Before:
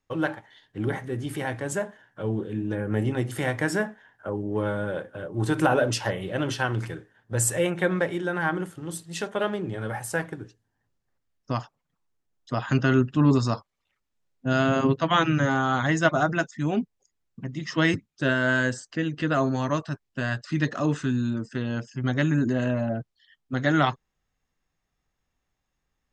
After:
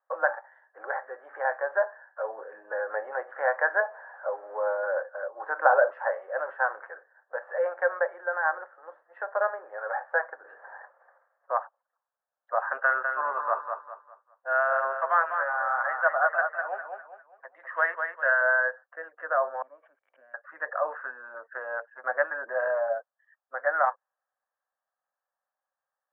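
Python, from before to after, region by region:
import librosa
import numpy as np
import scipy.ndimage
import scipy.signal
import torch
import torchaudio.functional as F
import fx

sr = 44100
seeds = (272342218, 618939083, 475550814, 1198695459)

y = fx.chain(x, sr, fx.zero_step(step_db=-39.0),
    fx.highpass(hz=290.0, slope=12),
    fx.peak_eq(hz=1700.0, db=-8.0, octaves=1.5), at=(3.8, 4.83))
y = fx.chain(y, sr, fx.air_absorb(metres=150.0),
    fx.doubler(ms=28.0, db=-12.5),
    fx.sustainer(db_per_s=21.0), at=(10.39, 11.58))
y = fx.chain(y, sr, fx.tilt_eq(slope=3.5),
    fx.echo_feedback(ms=201, feedback_pct=35, wet_db=-6), at=(12.77, 18.41))
y = fx.chain(y, sr, fx.crossing_spikes(level_db=-24.0),
    fx.formant_cascade(vowel='i'),
    fx.pre_swell(db_per_s=150.0), at=(19.62, 20.34))
y = scipy.signal.sosfilt(scipy.signal.cheby1(4, 1.0, [530.0, 1700.0], 'bandpass', fs=sr, output='sos'), y)
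y = fx.rider(y, sr, range_db=5, speed_s=2.0)
y = y * 10.0 ** (2.0 / 20.0)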